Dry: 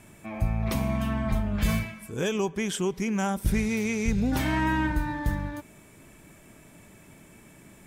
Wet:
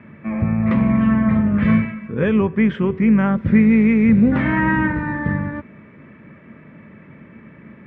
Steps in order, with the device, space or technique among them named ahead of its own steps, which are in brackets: de-hum 376.5 Hz, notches 33; sub-octave bass pedal (octave divider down 2 oct, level -3 dB; cabinet simulation 79–2400 Hz, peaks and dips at 150 Hz +5 dB, 220 Hz +10 dB, 520 Hz +6 dB, 740 Hz -7 dB, 1.2 kHz +5 dB, 1.9 kHz +7 dB); trim +5.5 dB

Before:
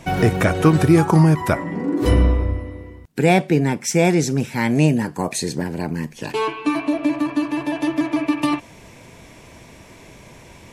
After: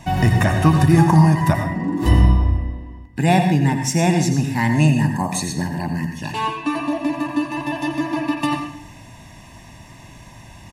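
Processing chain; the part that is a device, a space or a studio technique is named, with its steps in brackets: 2.58–3.19 s: treble shelf 5.3 kHz -11 dB; microphone above a desk (comb 1.1 ms, depth 77%; reverberation RT60 0.60 s, pre-delay 79 ms, DRR 5.5 dB); trim -2 dB

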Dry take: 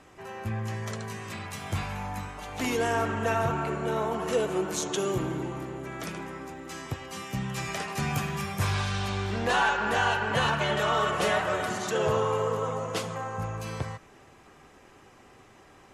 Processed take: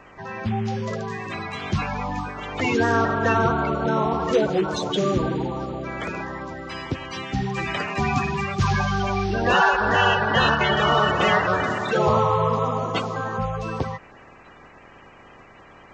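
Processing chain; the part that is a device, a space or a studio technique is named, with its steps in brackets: clip after many re-uploads (low-pass 5.2 kHz 24 dB/octave; coarse spectral quantiser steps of 30 dB); trim +7.5 dB

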